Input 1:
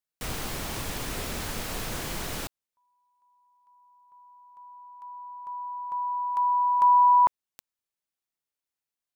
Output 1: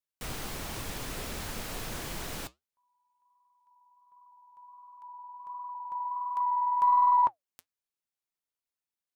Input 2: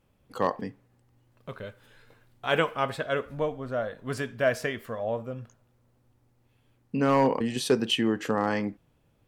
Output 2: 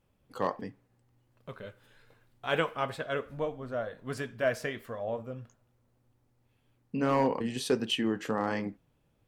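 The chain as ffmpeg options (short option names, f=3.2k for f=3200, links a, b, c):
-af "flanger=delay=0.9:depth=7.3:regen=-75:speed=1.4:shape=triangular,aeval=exprs='0.188*(cos(1*acos(clip(val(0)/0.188,-1,1)))-cos(1*PI/2))+0.00119*(cos(4*acos(clip(val(0)/0.188,-1,1)))-cos(4*PI/2))':c=same"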